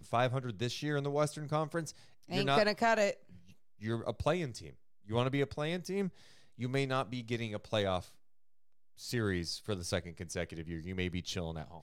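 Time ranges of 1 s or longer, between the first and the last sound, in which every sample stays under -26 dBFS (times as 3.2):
7.98–9.14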